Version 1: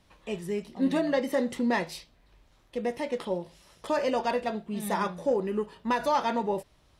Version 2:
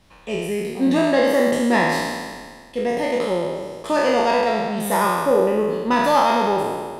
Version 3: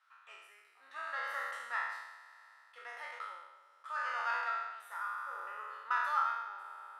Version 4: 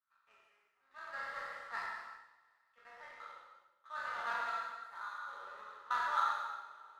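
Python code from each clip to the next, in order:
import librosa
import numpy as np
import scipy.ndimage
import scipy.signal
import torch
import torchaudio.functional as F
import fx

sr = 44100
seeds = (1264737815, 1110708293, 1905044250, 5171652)

y1 = fx.spec_trails(x, sr, decay_s=1.74)
y1 = y1 * 10.0 ** (5.5 / 20.0)
y2 = y1 * (1.0 - 0.7 / 2.0 + 0.7 / 2.0 * np.cos(2.0 * np.pi * 0.69 * (np.arange(len(y1)) / sr)))
y2 = fx.ladder_highpass(y2, sr, hz=1300.0, resonance_pct=85)
y2 = fx.high_shelf(y2, sr, hz=2000.0, db=-11.0)
y3 = fx.lowpass(y2, sr, hz=1500.0, slope=6)
y3 = fx.power_curve(y3, sr, exponent=1.4)
y3 = fx.rev_gated(y3, sr, seeds[0], gate_ms=400, shape='falling', drr_db=-1.0)
y3 = y3 * 10.0 ** (1.0 / 20.0)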